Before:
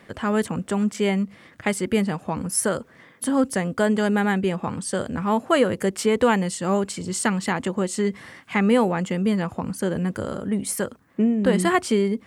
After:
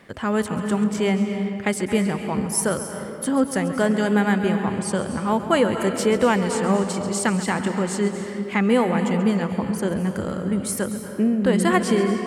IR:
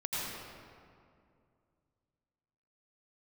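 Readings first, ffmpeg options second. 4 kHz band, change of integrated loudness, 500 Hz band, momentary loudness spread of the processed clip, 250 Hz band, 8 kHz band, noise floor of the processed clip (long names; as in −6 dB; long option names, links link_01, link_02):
+0.5 dB, +1.0 dB, +1.0 dB, 6 LU, +1.5 dB, +0.5 dB, −33 dBFS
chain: -filter_complex "[0:a]asplit=2[link_01][link_02];[1:a]atrim=start_sample=2205,adelay=136[link_03];[link_02][link_03]afir=irnorm=-1:irlink=0,volume=-11.5dB[link_04];[link_01][link_04]amix=inputs=2:normalize=0"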